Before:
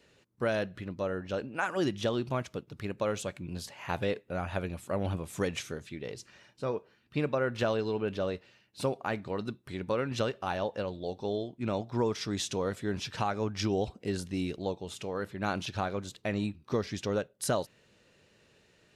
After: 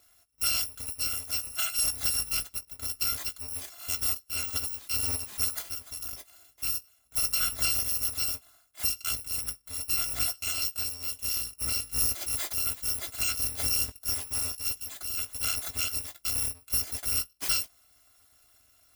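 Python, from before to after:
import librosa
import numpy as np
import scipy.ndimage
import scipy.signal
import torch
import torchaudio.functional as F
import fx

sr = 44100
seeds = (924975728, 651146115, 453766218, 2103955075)

y = fx.bit_reversed(x, sr, seeds[0], block=256)
y = fx.doubler(y, sr, ms=18.0, db=-11.5)
y = F.gain(torch.from_numpy(y), 1.5).numpy()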